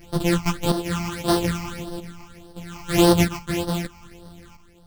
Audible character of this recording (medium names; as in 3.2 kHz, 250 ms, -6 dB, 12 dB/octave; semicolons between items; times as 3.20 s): a buzz of ramps at a fixed pitch in blocks of 256 samples; phasing stages 8, 1.7 Hz, lowest notch 480–2300 Hz; chopped level 0.78 Hz, depth 65%, duty 55%; a shimmering, thickened sound